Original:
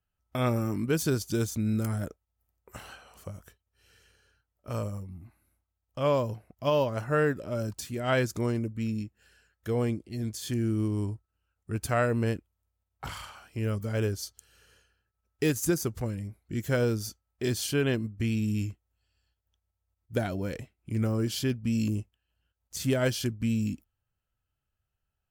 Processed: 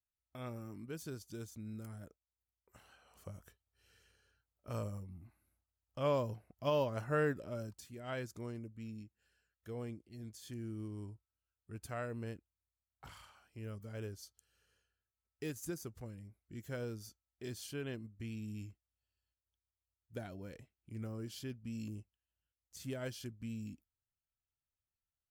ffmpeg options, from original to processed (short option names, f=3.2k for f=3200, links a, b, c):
-af "volume=-7.5dB,afade=t=in:st=2.91:d=0.41:silence=0.298538,afade=t=out:st=7.37:d=0.4:silence=0.398107"